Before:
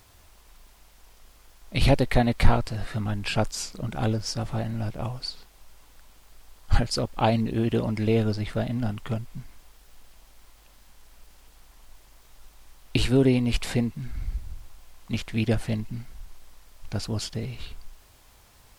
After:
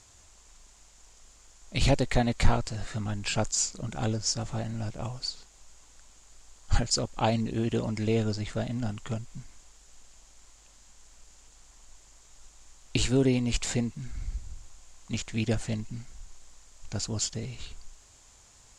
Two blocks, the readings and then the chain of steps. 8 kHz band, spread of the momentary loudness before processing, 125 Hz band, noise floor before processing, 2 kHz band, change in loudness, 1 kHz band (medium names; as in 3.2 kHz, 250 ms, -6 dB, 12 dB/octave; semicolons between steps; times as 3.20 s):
+7.0 dB, 14 LU, -4.0 dB, -55 dBFS, -3.5 dB, -3.0 dB, -4.0 dB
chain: resonant low-pass 7.1 kHz, resonance Q 5.7; trim -4 dB